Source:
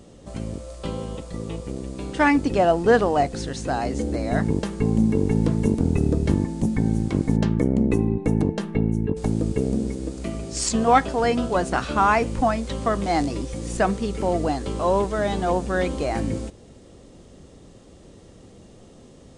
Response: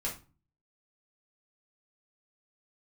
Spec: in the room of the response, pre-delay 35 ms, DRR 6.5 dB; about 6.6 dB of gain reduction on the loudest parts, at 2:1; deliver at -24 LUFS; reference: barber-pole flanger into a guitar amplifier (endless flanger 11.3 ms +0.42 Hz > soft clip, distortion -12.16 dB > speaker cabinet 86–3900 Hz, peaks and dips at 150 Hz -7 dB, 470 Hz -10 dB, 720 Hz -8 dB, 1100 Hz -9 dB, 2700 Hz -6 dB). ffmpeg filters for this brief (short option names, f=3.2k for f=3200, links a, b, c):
-filter_complex "[0:a]acompressor=threshold=-24dB:ratio=2,asplit=2[a][b];[1:a]atrim=start_sample=2205,adelay=35[c];[b][c]afir=irnorm=-1:irlink=0,volume=-10dB[d];[a][d]amix=inputs=2:normalize=0,asplit=2[e][f];[f]adelay=11.3,afreqshift=0.42[g];[e][g]amix=inputs=2:normalize=1,asoftclip=threshold=-25dB,highpass=86,equalizer=f=150:t=q:w=4:g=-7,equalizer=f=470:t=q:w=4:g=-10,equalizer=f=720:t=q:w=4:g=-8,equalizer=f=1.1k:t=q:w=4:g=-9,equalizer=f=2.7k:t=q:w=4:g=-6,lowpass=f=3.9k:w=0.5412,lowpass=f=3.9k:w=1.3066,volume=12dB"